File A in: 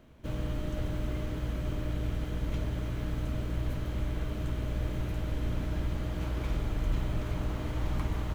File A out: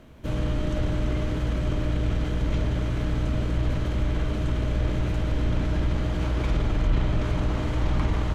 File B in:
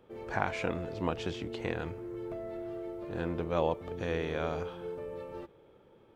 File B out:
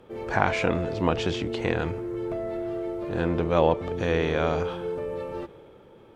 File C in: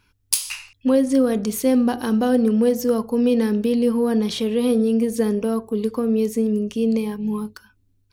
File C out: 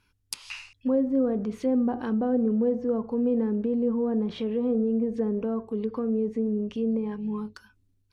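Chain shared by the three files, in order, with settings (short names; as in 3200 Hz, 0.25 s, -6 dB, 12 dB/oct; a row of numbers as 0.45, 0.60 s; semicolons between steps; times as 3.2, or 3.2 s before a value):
transient shaper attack -1 dB, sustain +3 dB; treble ducked by the level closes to 960 Hz, closed at -16.5 dBFS; match loudness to -27 LUFS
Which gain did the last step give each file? +7.5, +8.5, -6.5 dB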